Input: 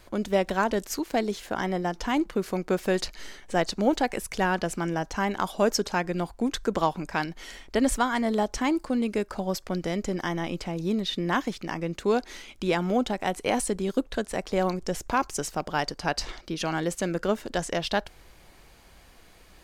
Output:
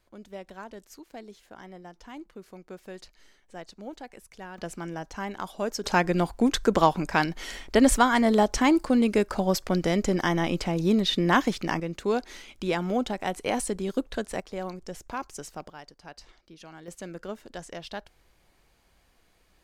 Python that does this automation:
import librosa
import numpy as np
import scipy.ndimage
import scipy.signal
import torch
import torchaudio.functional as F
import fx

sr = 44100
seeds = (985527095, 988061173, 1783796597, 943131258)

y = fx.gain(x, sr, db=fx.steps((0.0, -17.0), (4.58, -7.0), (5.84, 4.5), (11.8, -2.0), (14.4, -9.0), (15.7, -18.0), (16.88, -11.0)))